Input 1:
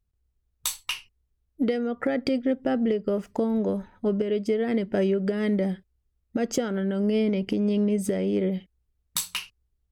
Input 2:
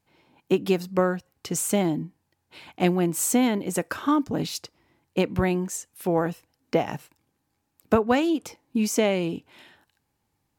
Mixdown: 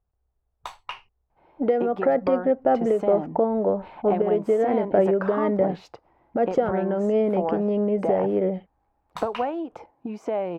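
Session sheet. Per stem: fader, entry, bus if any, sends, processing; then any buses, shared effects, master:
-2.0 dB, 0.00 s, no send, dry
-3.0 dB, 1.30 s, no send, compressor 10:1, threshold -27 dBFS, peak gain reduction 13 dB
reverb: off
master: EQ curve 270 Hz 0 dB, 760 Hz +14 dB, 11000 Hz -29 dB

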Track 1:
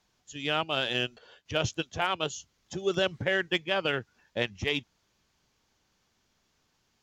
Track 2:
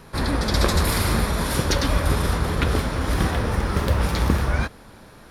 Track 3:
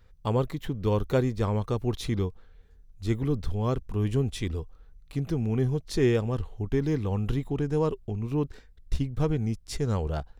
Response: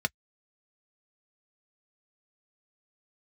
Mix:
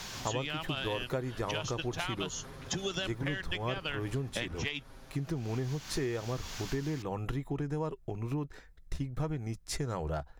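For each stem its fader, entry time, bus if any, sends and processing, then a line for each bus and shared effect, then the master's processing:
+1.5 dB, 0.00 s, no send, bell 420 Hz -9.5 dB 1.8 oct; three-band squash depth 100%
-12.0 dB, 0.00 s, no send, comb 7.5 ms, depth 97%; compressor 3:1, threshold -30 dBFS, peak gain reduction 12.5 dB; limiter -26.5 dBFS, peak gain reduction 11.5 dB
+1.0 dB, 0.00 s, send -11.5 dB, tilt shelf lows -3 dB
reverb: on, pre-delay 3 ms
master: compressor, threshold -31 dBFS, peak gain reduction 13 dB

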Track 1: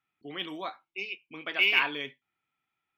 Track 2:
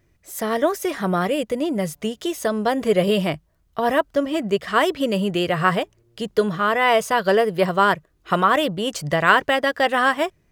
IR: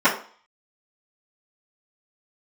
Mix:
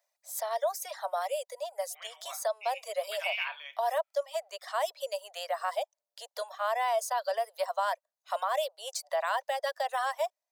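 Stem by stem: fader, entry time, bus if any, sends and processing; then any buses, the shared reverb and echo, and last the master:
-8.0 dB, 1.65 s, no send, dry
-4.0 dB, 0.00 s, no send, reverb removal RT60 0.81 s; band shelf 1900 Hz -10 dB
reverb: off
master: steep high-pass 570 Hz 72 dB/oct; limiter -21 dBFS, peak gain reduction 7 dB

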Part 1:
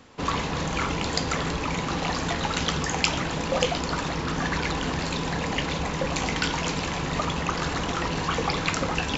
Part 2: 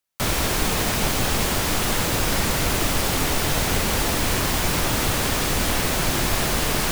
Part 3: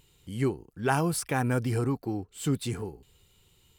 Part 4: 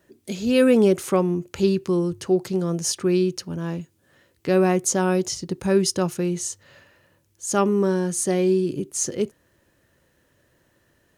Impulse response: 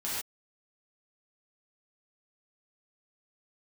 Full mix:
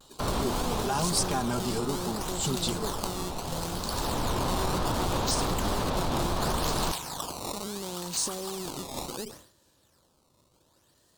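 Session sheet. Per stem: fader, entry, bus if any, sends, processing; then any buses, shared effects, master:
-12.0 dB, 0.00 s, bus B, no send, tilt shelf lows -5 dB, about 660 Hz
+0.5 dB, 0.00 s, bus A, no send, Bessel low-pass 1300 Hz, order 2; auto duck -13 dB, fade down 1.80 s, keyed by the third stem
-3.0 dB, 0.00 s, bus A, no send, comb 4.9 ms, depth 95%
-5.0 dB, 0.00 s, bus B, no send, one-sided clip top -24 dBFS; limiter -16.5 dBFS, peak gain reduction 6 dB
bus A: 0.0 dB, Chebyshev low-pass 5600 Hz, order 2; limiter -21.5 dBFS, peak gain reduction 9.5 dB
bus B: 0.0 dB, decimation with a swept rate 16×, swing 160% 0.7 Hz; compressor 4:1, threshold -36 dBFS, peak gain reduction 12.5 dB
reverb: off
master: ten-band EQ 1000 Hz +6 dB, 2000 Hz -9 dB, 4000 Hz +9 dB, 8000 Hz +8 dB, 16000 Hz +9 dB; vibrato 1.1 Hz 62 cents; sustainer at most 100 dB/s

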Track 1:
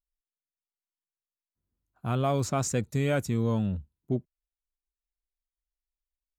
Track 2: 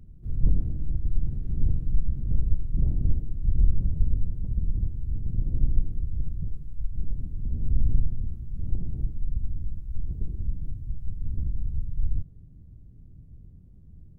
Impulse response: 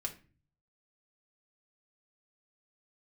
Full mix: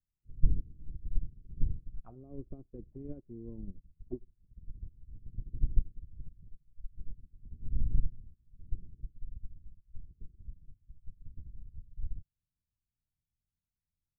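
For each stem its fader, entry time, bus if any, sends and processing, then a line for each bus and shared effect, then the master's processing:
-6.0 dB, 0.00 s, send -15 dB, envelope low-pass 340–3100 Hz down, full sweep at -25 dBFS
-1.5 dB, 0.00 s, no send, FFT band-reject 500–2800 Hz; auto duck -9 dB, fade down 0.20 s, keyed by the first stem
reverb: on, RT60 0.35 s, pre-delay 3 ms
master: upward expander 2.5:1, over -42 dBFS

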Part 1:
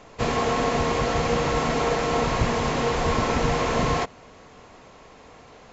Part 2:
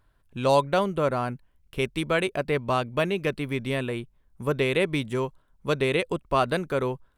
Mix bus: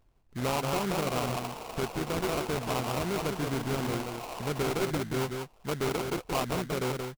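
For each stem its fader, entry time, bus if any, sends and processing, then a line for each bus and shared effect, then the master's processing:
-7.0 dB, 0.70 s, no send, no echo send, reverb removal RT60 0.67 s; HPF 310 Hz 24 dB/oct; band shelf 760 Hz +8 dB 1.1 oct; auto duck -10 dB, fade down 1.55 s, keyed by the second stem
-2.0 dB, 0.00 s, no send, echo send -6.5 dB, dry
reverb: off
echo: echo 0.178 s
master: bell 570 Hz -6 dB 0.35 oct; sample-rate reducer 1800 Hz, jitter 20%; limiter -22 dBFS, peak gain reduction 8.5 dB

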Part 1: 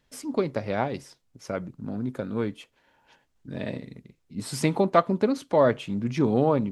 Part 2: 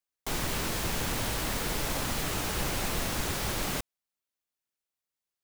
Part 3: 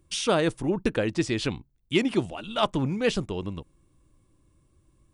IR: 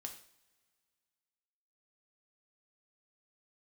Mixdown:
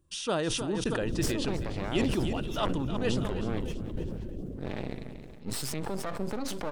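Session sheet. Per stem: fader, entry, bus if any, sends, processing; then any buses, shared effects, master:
+0.5 dB, 1.10 s, no send, echo send -18.5 dB, compressor 6:1, threshold -26 dBFS, peak gain reduction 13 dB; limiter -22.5 dBFS, peak gain reduction 9 dB; half-wave rectifier
-1.0 dB, 0.75 s, no send, echo send -7 dB, inverse Chebyshev low-pass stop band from 910 Hz, stop band 40 dB; reverb removal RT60 1.9 s
-7.0 dB, 0.00 s, no send, echo send -12 dB, notch 2200 Hz, Q 6.5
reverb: off
echo: feedback echo 0.316 s, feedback 41%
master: sustainer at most 25 dB/s

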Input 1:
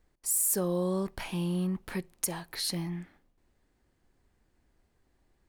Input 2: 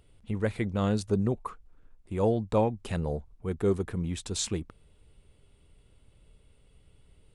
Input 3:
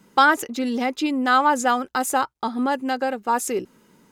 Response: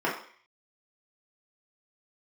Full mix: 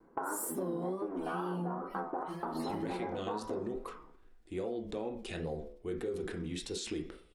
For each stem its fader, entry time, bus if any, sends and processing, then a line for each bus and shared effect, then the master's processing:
-5.0 dB, 0.00 s, send -11 dB, median-filter separation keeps harmonic
-5.5 dB, 2.40 s, send -9.5 dB, ten-band EQ 125 Hz -10 dB, 1000 Hz -11 dB, 4000 Hz +8 dB; limiter -26.5 dBFS, peak gain reduction 12 dB; sustainer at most 82 dB/s
-12.5 dB, 0.00 s, send -5 dB, cycle switcher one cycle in 3, muted; LPF 1300 Hz 24 dB/oct; compressor, threshold -28 dBFS, peak gain reduction 13 dB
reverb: on, RT60 0.50 s, pre-delay 3 ms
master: wow and flutter 67 cents; compressor, threshold -33 dBFS, peak gain reduction 9 dB

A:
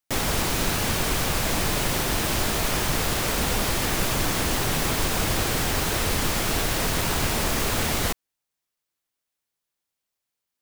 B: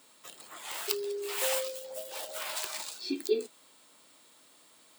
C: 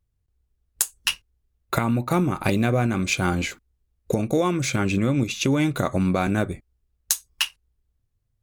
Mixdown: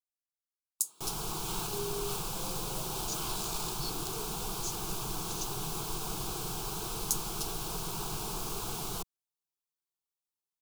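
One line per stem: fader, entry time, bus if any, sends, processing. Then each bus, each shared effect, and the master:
-10.0 dB, 0.90 s, no send, dry
-1.5 dB, 0.80 s, no send, negative-ratio compressor -37 dBFS; high shelf 10000 Hz -6 dB
-8.0 dB, 0.00 s, no send, inverse Chebyshev high-pass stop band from 2200 Hz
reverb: off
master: fixed phaser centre 380 Hz, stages 8

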